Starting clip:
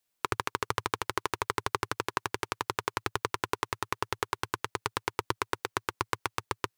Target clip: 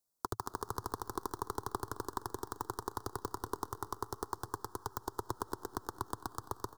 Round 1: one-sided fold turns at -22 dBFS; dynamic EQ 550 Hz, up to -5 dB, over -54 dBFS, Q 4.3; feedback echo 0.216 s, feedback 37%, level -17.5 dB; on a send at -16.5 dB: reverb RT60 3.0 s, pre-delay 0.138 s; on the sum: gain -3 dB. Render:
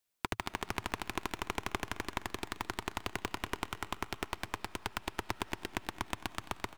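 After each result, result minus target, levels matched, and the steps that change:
2000 Hz band +10.0 dB; one-sided fold: distortion +13 dB
add after dynamic EQ: Butterworth band-stop 2400 Hz, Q 0.7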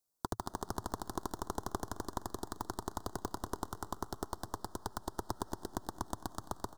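one-sided fold: distortion +13 dB
change: one-sided fold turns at -15 dBFS

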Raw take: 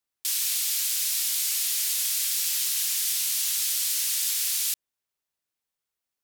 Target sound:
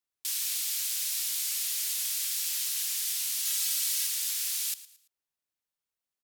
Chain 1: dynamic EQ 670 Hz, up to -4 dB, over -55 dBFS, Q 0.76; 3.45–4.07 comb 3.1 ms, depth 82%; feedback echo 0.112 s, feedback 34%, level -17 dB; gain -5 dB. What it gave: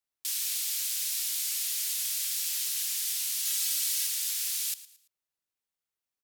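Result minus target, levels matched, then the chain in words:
500 Hz band -3.0 dB
dynamic EQ 200 Hz, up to -4 dB, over -55 dBFS, Q 0.76; 3.45–4.07 comb 3.1 ms, depth 82%; feedback echo 0.112 s, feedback 34%, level -17 dB; gain -5 dB

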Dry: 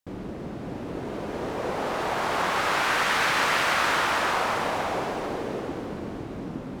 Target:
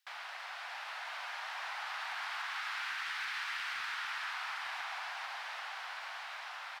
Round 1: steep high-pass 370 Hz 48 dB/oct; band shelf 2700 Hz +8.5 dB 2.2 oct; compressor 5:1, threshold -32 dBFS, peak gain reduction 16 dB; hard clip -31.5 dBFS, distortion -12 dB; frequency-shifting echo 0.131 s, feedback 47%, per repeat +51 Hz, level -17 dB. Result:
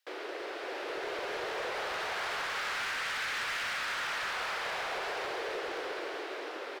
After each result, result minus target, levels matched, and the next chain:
500 Hz band +15.0 dB; compressor: peak gain reduction -6.5 dB
steep high-pass 760 Hz 48 dB/oct; band shelf 2700 Hz +8.5 dB 2.2 oct; compressor 5:1, threshold -32 dBFS, peak gain reduction 16 dB; hard clip -31.5 dBFS, distortion -12 dB; frequency-shifting echo 0.131 s, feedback 47%, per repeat +51 Hz, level -17 dB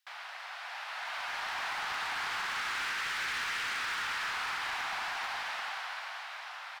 compressor: peak gain reduction -6.5 dB
steep high-pass 760 Hz 48 dB/oct; band shelf 2700 Hz +8.5 dB 2.2 oct; compressor 5:1, threshold -40 dBFS, peak gain reduction 22.5 dB; hard clip -31.5 dBFS, distortion -29 dB; frequency-shifting echo 0.131 s, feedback 47%, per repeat +51 Hz, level -17 dB

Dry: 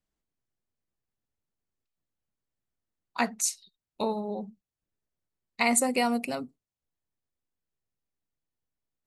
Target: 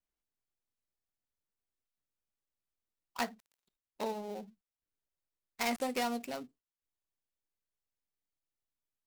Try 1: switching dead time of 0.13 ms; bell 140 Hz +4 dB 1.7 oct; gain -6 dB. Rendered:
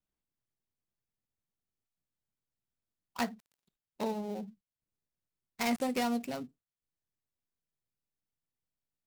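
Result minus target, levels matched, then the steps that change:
125 Hz band +5.5 dB
change: bell 140 Hz -6.5 dB 1.7 oct

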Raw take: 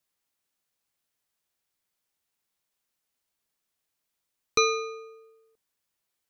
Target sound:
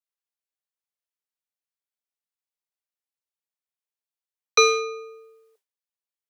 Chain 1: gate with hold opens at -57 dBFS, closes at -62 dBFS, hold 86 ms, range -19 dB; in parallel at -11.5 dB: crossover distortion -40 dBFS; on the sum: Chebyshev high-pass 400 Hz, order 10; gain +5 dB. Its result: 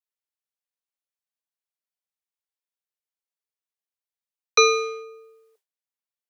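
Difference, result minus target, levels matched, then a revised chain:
crossover distortion: distortion -9 dB
gate with hold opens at -57 dBFS, closes at -62 dBFS, hold 86 ms, range -19 dB; in parallel at -11.5 dB: crossover distortion -28 dBFS; on the sum: Chebyshev high-pass 400 Hz, order 10; gain +5 dB

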